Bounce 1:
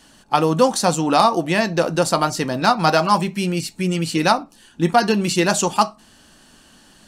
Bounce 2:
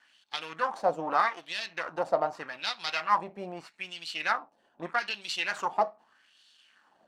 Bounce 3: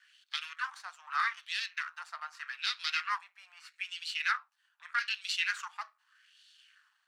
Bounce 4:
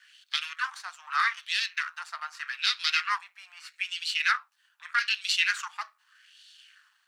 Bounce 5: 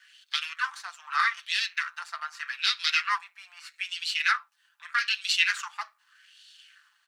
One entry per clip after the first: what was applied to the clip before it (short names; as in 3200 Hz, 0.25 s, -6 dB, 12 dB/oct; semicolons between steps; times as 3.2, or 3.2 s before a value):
half-wave gain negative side -12 dB; wah 0.81 Hz 620–3700 Hz, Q 2.7
steep high-pass 1300 Hz 36 dB/oct
tilt shelf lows -3.5 dB, about 1200 Hz; gain +4.5 dB
comb 5.9 ms, depth 38%